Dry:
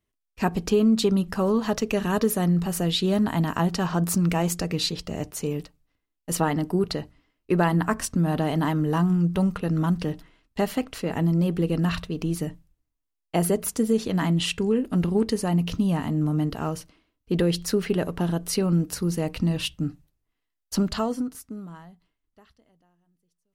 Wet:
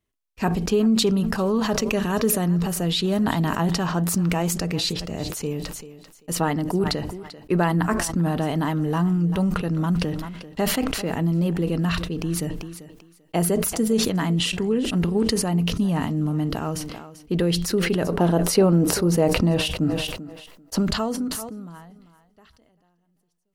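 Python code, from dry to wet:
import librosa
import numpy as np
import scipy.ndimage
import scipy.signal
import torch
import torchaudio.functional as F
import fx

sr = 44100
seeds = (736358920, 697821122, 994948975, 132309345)

y = fx.peak_eq(x, sr, hz=580.0, db=10.5, octaves=2.2, at=(18.08, 20.77), fade=0.02)
y = fx.echo_thinned(y, sr, ms=391, feedback_pct=16, hz=190.0, wet_db=-19.5)
y = fx.sustainer(y, sr, db_per_s=41.0)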